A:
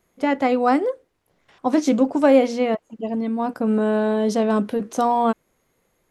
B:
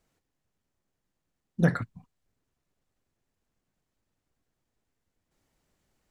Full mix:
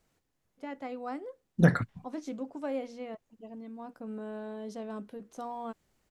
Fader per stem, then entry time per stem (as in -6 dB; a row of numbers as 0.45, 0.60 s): -20.0, +1.5 dB; 0.40, 0.00 s